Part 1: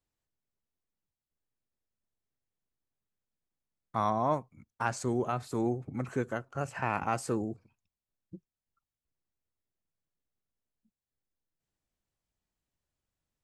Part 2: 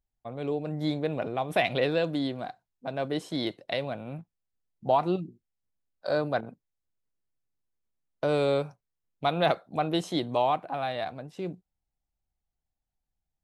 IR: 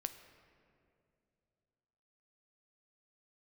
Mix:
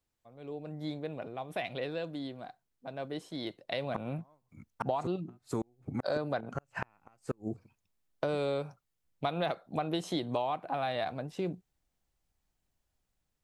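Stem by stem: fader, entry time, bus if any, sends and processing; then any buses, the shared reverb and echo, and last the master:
+3.0 dB, 0.00 s, no send, gate with flip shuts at −21 dBFS, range −39 dB
0:03.39 −19.5 dB → 0:04.07 −9 dB, 0.00 s, no send, automatic gain control gain up to 11.5 dB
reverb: not used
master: downward compressor 6 to 1, threshold −29 dBFS, peak gain reduction 11.5 dB

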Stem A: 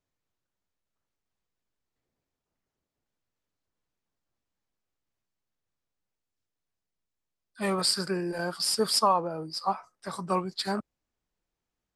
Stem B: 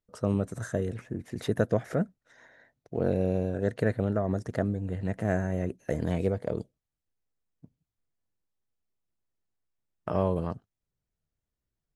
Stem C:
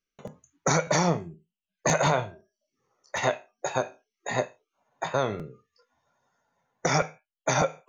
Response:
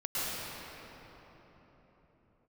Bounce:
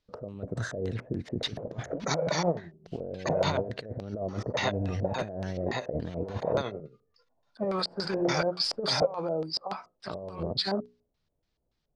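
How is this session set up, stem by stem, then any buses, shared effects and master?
−3.5 dB, 0.00 s, bus A, no send, mains-hum notches 60/120/180/240/300/360/420 Hz
+0.5 dB, 0.00 s, bus A, no send, no processing
−4.5 dB, 1.40 s, no bus, no send, amplitude tremolo 11 Hz, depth 69%; background raised ahead of every attack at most 67 dB per second
bus A: 0.0 dB, compressor whose output falls as the input rises −32 dBFS, ratio −0.5; brickwall limiter −22.5 dBFS, peak gain reduction 7 dB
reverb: not used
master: auto-filter low-pass square 3.5 Hz 590–4,400 Hz

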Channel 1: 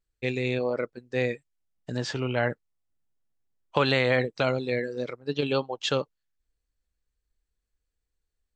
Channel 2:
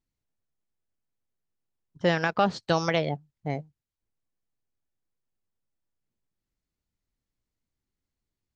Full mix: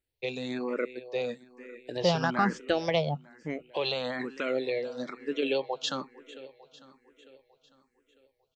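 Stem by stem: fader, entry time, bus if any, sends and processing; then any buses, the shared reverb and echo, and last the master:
+2.0 dB, 0.00 s, no send, echo send −18 dB, high-pass filter 190 Hz 24 dB per octave; brickwall limiter −20 dBFS, peak gain reduction 10 dB
+0.5 dB, 0.00 s, no send, no echo send, no processing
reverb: not used
echo: repeating echo 450 ms, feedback 57%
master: frequency shifter mixed with the dry sound +1.1 Hz

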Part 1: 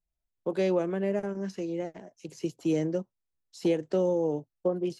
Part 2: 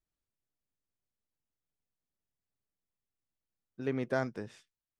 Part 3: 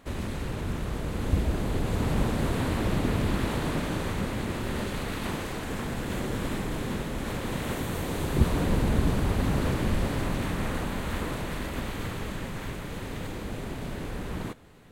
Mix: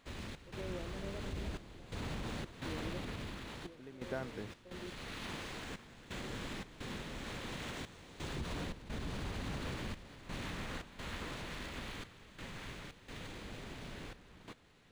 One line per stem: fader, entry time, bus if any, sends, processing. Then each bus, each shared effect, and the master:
−18.0 dB, 0.00 s, bus A, no send, no processing
+2.0 dB, 0.00 s, bus A, no send, no processing
−13.5 dB, 0.00 s, no bus, no send, parametric band 4,500 Hz +10.5 dB 2.9 octaves; brickwall limiter −18 dBFS, peak gain reduction 9.5 dB; automatic ducking −7 dB, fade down 0.90 s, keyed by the second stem
bus A: 0.0 dB, downward compressor 3 to 1, threshold −40 dBFS, peak gain reduction 12.5 dB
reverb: not used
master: gate pattern "xx.xxxxxx..x" 86 BPM −12 dB; linearly interpolated sample-rate reduction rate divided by 3×

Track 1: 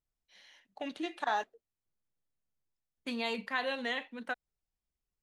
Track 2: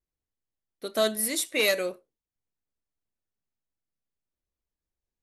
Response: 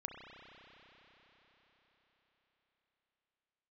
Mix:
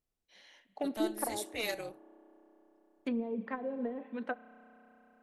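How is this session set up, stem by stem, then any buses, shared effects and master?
−2.5 dB, 0.00 s, send −9 dB, parametric band 360 Hz +7.5 dB 2.1 octaves; treble cut that deepens with the level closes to 370 Hz, closed at −27 dBFS
−8.5 dB, 0.00 s, no send, amplitude modulation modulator 220 Hz, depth 75%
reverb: on, RT60 4.8 s, pre-delay 31 ms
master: no processing

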